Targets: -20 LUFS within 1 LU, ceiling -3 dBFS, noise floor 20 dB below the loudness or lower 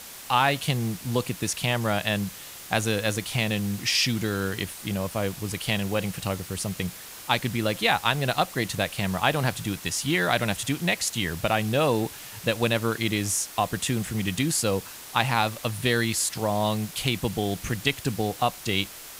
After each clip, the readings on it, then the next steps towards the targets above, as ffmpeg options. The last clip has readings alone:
noise floor -42 dBFS; noise floor target -46 dBFS; loudness -26.0 LUFS; peak level -4.5 dBFS; loudness target -20.0 LUFS
-> -af "afftdn=nr=6:nf=-42"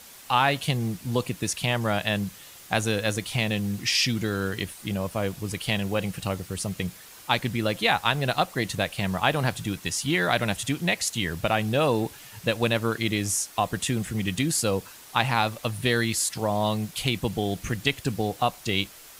noise floor -47 dBFS; loudness -26.0 LUFS; peak level -4.5 dBFS; loudness target -20.0 LUFS
-> -af "volume=2,alimiter=limit=0.708:level=0:latency=1"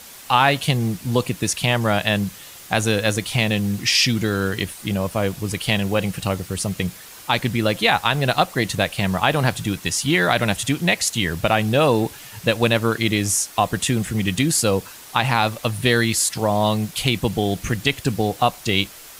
loudness -20.5 LUFS; peak level -3.0 dBFS; noise floor -41 dBFS

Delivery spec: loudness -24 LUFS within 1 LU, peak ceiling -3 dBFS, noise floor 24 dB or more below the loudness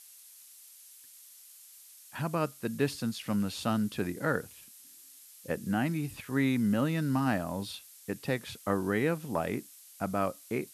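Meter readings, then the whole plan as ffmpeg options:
noise floor -54 dBFS; noise floor target -56 dBFS; loudness -32.0 LUFS; peak level -13.0 dBFS; loudness target -24.0 LUFS
-> -af "afftdn=nr=6:nf=-54"
-af "volume=2.51"

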